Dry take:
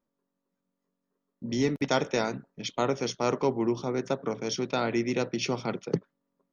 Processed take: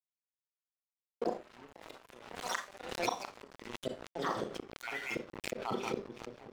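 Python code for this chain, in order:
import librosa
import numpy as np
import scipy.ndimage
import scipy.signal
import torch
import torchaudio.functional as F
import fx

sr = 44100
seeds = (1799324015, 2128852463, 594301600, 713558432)

p1 = fx.spec_dropout(x, sr, seeds[0], share_pct=66)
p2 = p1 + fx.echo_split(p1, sr, split_hz=650.0, low_ms=743, high_ms=183, feedback_pct=52, wet_db=-14.0, dry=0)
p3 = fx.env_lowpass_down(p2, sr, base_hz=1600.0, full_db=-26.5)
p4 = fx.air_absorb(p3, sr, metres=100.0)
p5 = fx.echo_pitch(p4, sr, ms=249, semitones=6, count=3, db_per_echo=-3.0)
p6 = fx.gate_flip(p5, sr, shuts_db=-23.0, range_db=-28)
p7 = fx.low_shelf(p6, sr, hz=330.0, db=-9.5)
p8 = fx.rev_schroeder(p7, sr, rt60_s=0.34, comb_ms=29, drr_db=3.0)
p9 = fx.rider(p8, sr, range_db=4, speed_s=2.0)
p10 = np.sign(p9) * np.maximum(np.abs(p9) - 10.0 ** (-55.0 / 20.0), 0.0)
p11 = fx.pre_swell(p10, sr, db_per_s=64.0)
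y = p11 * 10.0 ** (4.0 / 20.0)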